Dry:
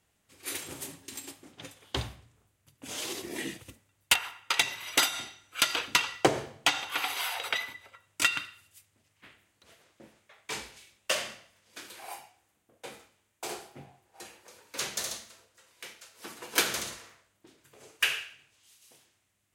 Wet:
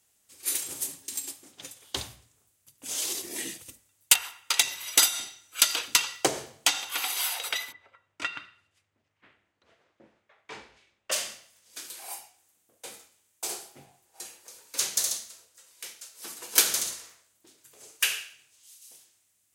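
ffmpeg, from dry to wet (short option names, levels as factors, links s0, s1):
-filter_complex "[0:a]asplit=3[s0][s1][s2];[s0]afade=t=out:st=7.71:d=0.02[s3];[s1]lowpass=1900,afade=t=in:st=7.71:d=0.02,afade=t=out:st=11.11:d=0.02[s4];[s2]afade=t=in:st=11.11:d=0.02[s5];[s3][s4][s5]amix=inputs=3:normalize=0,bass=f=250:g=-4,treble=f=4000:g=13,bandreject=f=60:t=h:w=6,bandreject=f=120:t=h:w=6,bandreject=f=180:t=h:w=6,volume=0.708"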